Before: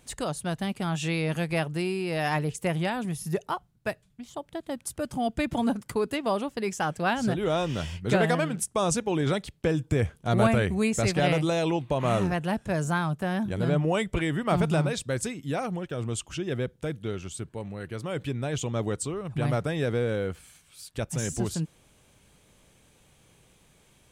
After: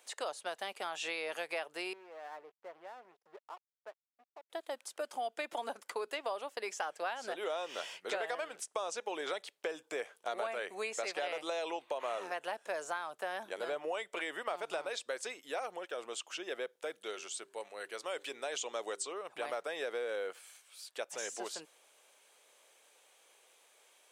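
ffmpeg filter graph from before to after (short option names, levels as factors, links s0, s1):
-filter_complex "[0:a]asettb=1/sr,asplit=3[s0][s1][s2];[s0]atrim=end=1.934[s3];[s1]atrim=start=1.93:end=4.5,asetpts=PTS-STARTPTS,afade=t=in:d=0.004:c=qsin,afade=t=out:st=2.566:d=0.004:c=qsin,lowpass=1200,acompressor=threshold=0.001:ratio=1.5:attack=3.2:release=140:knee=1:detection=peak,aeval=exprs='sgn(val(0))*max(abs(val(0))-0.00251,0)':c=same[s4];[s2]atrim=start=4.496[s5];[s3][s4]acrossfade=d=0.004:c1=hsin:c2=qsin[s6];[s6][s5]acrossfade=d=0.004:c1=qsin:c2=hsin,asettb=1/sr,asplit=3[s7][s8][s9];[s7]atrim=end=17.014[s10];[s8]atrim=start=17.01:end=19.13,asetpts=PTS-STARTPTS,afade=t=in:d=0.004:c=qsin,afade=t=out:st=2.116:d=0.004:c=qsin,equalizer=f=7700:w=0.6:g=7.5,bandreject=f=98.89:t=h:w=4,bandreject=f=197.78:t=h:w=4,bandreject=f=296.67:t=h:w=4,bandreject=f=395.56:t=h:w=4[s11];[s9]atrim=start=19.126[s12];[s10][s11]acrossfade=d=0.004:c1=hsin:c2=qsin[s13];[s13][s12]acrossfade=d=0.004:c1=qsin:c2=hsin,acrossover=split=6700[s14][s15];[s15]acompressor=threshold=0.00282:ratio=4:attack=1:release=60[s16];[s14][s16]amix=inputs=2:normalize=0,highpass=f=480:w=0.5412,highpass=f=480:w=1.3066,acompressor=threshold=0.0251:ratio=6,volume=0.794"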